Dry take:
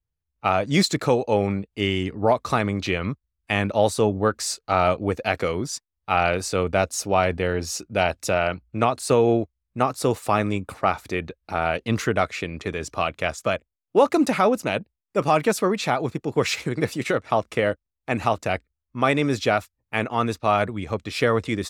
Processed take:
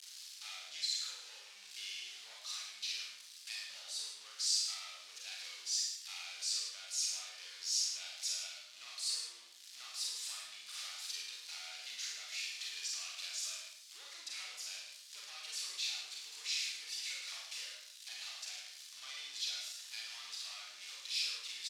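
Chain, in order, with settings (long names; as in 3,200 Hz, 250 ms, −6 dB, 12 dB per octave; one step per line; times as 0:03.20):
converter with a step at zero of −24.5 dBFS
high-shelf EQ 5,800 Hz −6 dB
downward compressor 3 to 1, threshold −25 dBFS, peak gain reduction 10.5 dB
asymmetric clip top −24 dBFS
four-pole ladder band-pass 5,500 Hz, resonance 30%
single-tap delay 108 ms −8 dB
four-comb reverb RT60 0.54 s, combs from 31 ms, DRR −2 dB
level +3 dB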